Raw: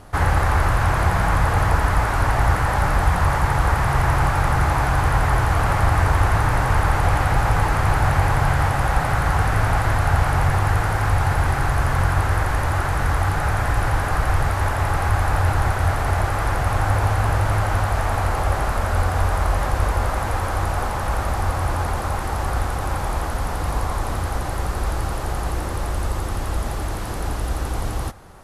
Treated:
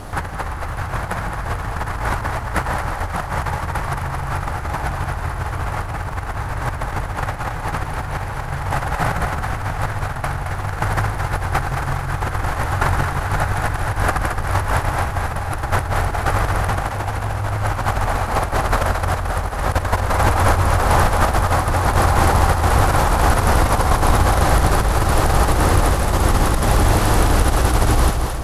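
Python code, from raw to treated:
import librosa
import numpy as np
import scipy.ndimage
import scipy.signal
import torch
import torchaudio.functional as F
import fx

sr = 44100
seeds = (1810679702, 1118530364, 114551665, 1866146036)

y = fx.over_compress(x, sr, threshold_db=-24.0, ratio=-0.5)
y = fx.dmg_crackle(y, sr, seeds[0], per_s=130.0, level_db=-48.0)
y = fx.echo_split(y, sr, split_hz=390.0, low_ms=164, high_ms=220, feedback_pct=52, wet_db=-6.0)
y = F.gain(torch.from_numpy(y), 5.5).numpy()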